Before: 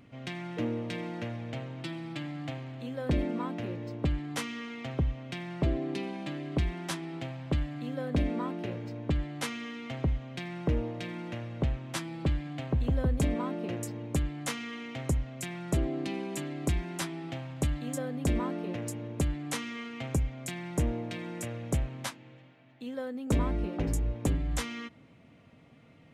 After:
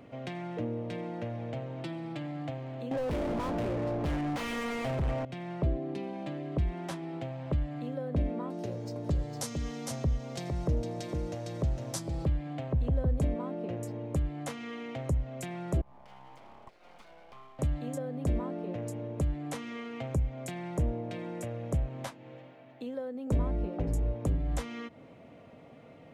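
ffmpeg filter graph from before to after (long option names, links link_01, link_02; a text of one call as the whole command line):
ffmpeg -i in.wav -filter_complex "[0:a]asettb=1/sr,asplit=3[link_01][link_02][link_03];[link_01]atrim=end=2.914[link_04];[link_02]atrim=start=2.91:end=5.25,asetpts=PTS-STARTPTS,afade=type=in:duration=0.004:curve=qsin,afade=type=out:start_time=2.336:duration=0.004:curve=qsin,asplit=2[link_05][link_06];[link_06]highpass=frequency=720:poles=1,volume=31dB,asoftclip=type=tanh:threshold=-17.5dB[link_07];[link_05][link_07]amix=inputs=2:normalize=0,lowpass=frequency=7500:poles=1,volume=-6dB,adynamicsmooth=sensitivity=4:basefreq=1000,asoftclip=type=hard:threshold=-25dB[link_08];[link_03]atrim=start=5.246[link_09];[link_04][link_08]acrossfade=duration=0.004:curve1=hsin:curve2=qsin[link_10];[link_10][link_09]acrossfade=duration=0.004:curve1=qsin:curve2=hsin,asettb=1/sr,asplit=3[link_11][link_12][link_13];[link_11]atrim=end=8.504[link_14];[link_12]atrim=start=8.5:end=12.26,asetpts=PTS-STARTPTS,afade=type=in:duration=0.004:curve=qsin,afade=type=out:start_time=3.756:duration=0.004:curve=qsin,highshelf=frequency=3900:width_type=q:width=1.5:gain=13,aecho=1:1:457:0.501,atrim=end_sample=165816[link_15];[link_13]atrim=start=12.256[link_16];[link_14][link_15]acrossfade=duration=0.004:curve1=hsin:curve2=qsin[link_17];[link_17][link_16]acrossfade=duration=0.004:curve1=qsin:curve2=hsin,asettb=1/sr,asplit=3[link_18][link_19][link_20];[link_18]atrim=end=15.814[link_21];[link_19]atrim=start=15.81:end=17.59,asetpts=PTS-STARTPTS,afade=type=in:duration=0.004:curve=qsin,afade=type=out:start_time=1.776:duration=0.004:curve=qsin,acompressor=threshold=-35dB:ratio=12:attack=3.2:release=140:knee=1:detection=peak,asplit=3[link_22][link_23][link_24];[link_22]bandpass=frequency=530:width_type=q:width=8,volume=0dB[link_25];[link_23]bandpass=frequency=1840:width_type=q:width=8,volume=-6dB[link_26];[link_24]bandpass=frequency=2480:width_type=q:width=8,volume=-9dB[link_27];[link_25][link_26][link_27]amix=inputs=3:normalize=0,aeval=exprs='abs(val(0))':channel_layout=same[link_28];[link_20]atrim=start=17.586[link_29];[link_21][link_28]acrossfade=duration=0.004:curve1=hsin:curve2=qsin[link_30];[link_30][link_29]acrossfade=duration=0.004:curve1=qsin:curve2=hsin,equalizer=frequency=580:width_type=o:width=1.7:gain=11.5,acrossover=split=180[link_31][link_32];[link_32]acompressor=threshold=-41dB:ratio=2.5[link_33];[link_31][link_33]amix=inputs=2:normalize=0" out.wav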